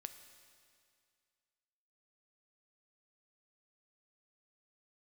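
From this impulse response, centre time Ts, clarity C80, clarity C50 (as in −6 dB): 21 ms, 11.0 dB, 10.0 dB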